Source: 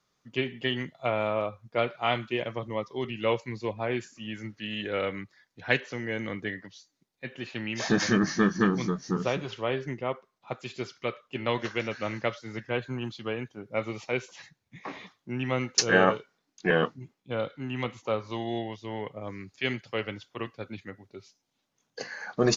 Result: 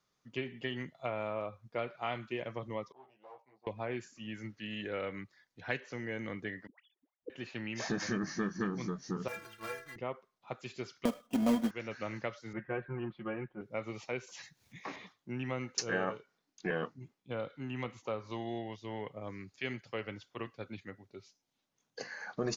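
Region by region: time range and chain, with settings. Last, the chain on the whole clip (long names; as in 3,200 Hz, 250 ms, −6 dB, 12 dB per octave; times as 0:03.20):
0:02.92–0:03.67: tube saturation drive 32 dB, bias 0.65 + resonant band-pass 780 Hz, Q 6.6 + double-tracking delay 15 ms −3 dB
0:06.67–0:07.30: three sine waves on the formant tracks + high-frequency loss of the air 180 metres + all-pass dispersion highs, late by 123 ms, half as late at 690 Hz
0:09.28–0:09.96: one scale factor per block 3 bits + parametric band 1,500 Hz +12.5 dB 1.2 octaves + stiff-string resonator 100 Hz, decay 0.41 s, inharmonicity 0.03
0:11.05–0:11.71: each half-wave held at its own peak + comb filter 4.1 ms + hollow resonant body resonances 230/630/3,200 Hz, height 15 dB, ringing for 35 ms
0:12.53–0:13.61: low-pass filter 2,100 Hz 24 dB per octave + comb filter 5.6 ms, depth 95%
0:14.27–0:14.96: high-shelf EQ 3,000 Hz +9 dB + upward compression, threshold −50 dBFS
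whole clip: dynamic equaliser 3,400 Hz, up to −5 dB, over −49 dBFS, Q 2.5; downward compressor 2 to 1, threshold −30 dBFS; level −5 dB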